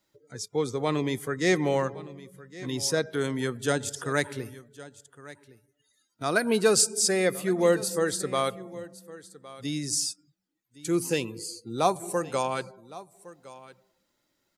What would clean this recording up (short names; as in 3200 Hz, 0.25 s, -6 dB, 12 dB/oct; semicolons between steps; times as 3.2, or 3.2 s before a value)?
inverse comb 1.112 s -18.5 dB